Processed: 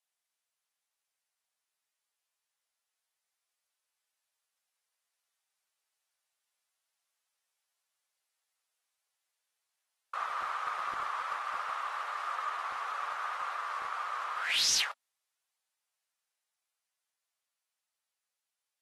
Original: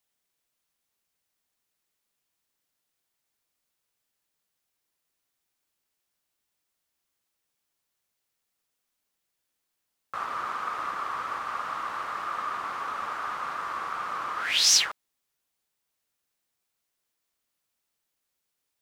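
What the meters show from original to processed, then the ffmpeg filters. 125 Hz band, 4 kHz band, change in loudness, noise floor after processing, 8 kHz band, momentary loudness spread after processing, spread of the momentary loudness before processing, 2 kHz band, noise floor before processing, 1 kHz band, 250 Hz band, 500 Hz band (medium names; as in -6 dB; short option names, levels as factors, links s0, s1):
no reading, -6.5 dB, -5.5 dB, under -85 dBFS, -8.5 dB, 9 LU, 12 LU, -3.0 dB, -81 dBFS, -3.5 dB, under -10 dB, -5.5 dB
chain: -filter_complex "[0:a]acrossover=split=530[s0][s1];[s0]acrusher=bits=6:mix=0:aa=0.000001[s2];[s2][s1]amix=inputs=2:normalize=0,dynaudnorm=f=910:g=9:m=1.41,bandreject=f=50:t=h:w=6,bandreject=f=100:t=h:w=6,bandreject=f=150:t=h:w=6,bandreject=f=200:t=h:w=6,bandreject=f=250:t=h:w=6,volume=8.91,asoftclip=hard,volume=0.112,volume=0.501" -ar 44100 -c:a aac -b:a 32k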